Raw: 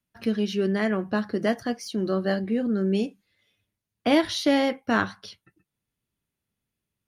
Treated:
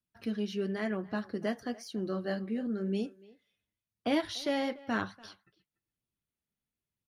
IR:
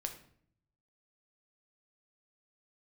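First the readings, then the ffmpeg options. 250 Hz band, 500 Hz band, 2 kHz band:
−9.0 dB, −9.0 dB, −9.5 dB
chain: -filter_complex "[0:a]flanger=delay=0.2:depth=5:regen=-55:speed=0.99:shape=sinusoidal,asplit=2[link_01][link_02];[link_02]adelay=290,highpass=300,lowpass=3400,asoftclip=type=hard:threshold=-20.5dB,volume=-20dB[link_03];[link_01][link_03]amix=inputs=2:normalize=0,volume=-5dB"

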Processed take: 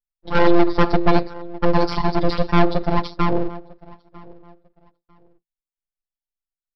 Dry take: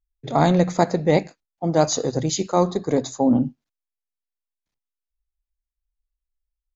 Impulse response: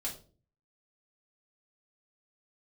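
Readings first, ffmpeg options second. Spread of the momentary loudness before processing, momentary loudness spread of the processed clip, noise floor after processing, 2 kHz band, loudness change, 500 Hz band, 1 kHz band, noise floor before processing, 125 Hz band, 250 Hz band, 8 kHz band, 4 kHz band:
6 LU, 8 LU, below −85 dBFS, +6.5 dB, +0.5 dB, 0.0 dB, +2.5 dB, below −85 dBFS, 0.0 dB, +0.5 dB, can't be measured, +0.5 dB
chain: -filter_complex "[0:a]agate=range=-23dB:threshold=-31dB:ratio=16:detection=peak,equalizer=frequency=2400:width_type=o:width=0.87:gain=-14,asplit=2[link_01][link_02];[link_02]adelay=948,lowpass=frequency=1100:poles=1,volume=-24dB,asplit=2[link_03][link_04];[link_04]adelay=948,lowpass=frequency=1100:poles=1,volume=0.25[link_05];[link_01][link_03][link_05]amix=inputs=3:normalize=0,asplit=2[link_06][link_07];[link_07]alimiter=limit=-11.5dB:level=0:latency=1:release=24,volume=0dB[link_08];[link_06][link_08]amix=inputs=2:normalize=0,afftfilt=real='hypot(re,im)*cos(PI*b)':imag='0':win_size=1024:overlap=0.75,aresample=11025,aeval=exprs='abs(val(0))':channel_layout=same,aresample=44100,acontrast=63,volume=-1dB"

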